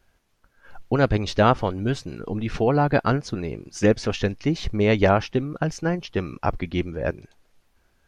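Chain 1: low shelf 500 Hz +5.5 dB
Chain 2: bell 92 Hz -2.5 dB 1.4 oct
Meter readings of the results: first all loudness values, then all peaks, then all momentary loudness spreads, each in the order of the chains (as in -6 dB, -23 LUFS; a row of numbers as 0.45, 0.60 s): -20.0, -24.0 LUFS; -1.0, -3.5 dBFS; 10, 11 LU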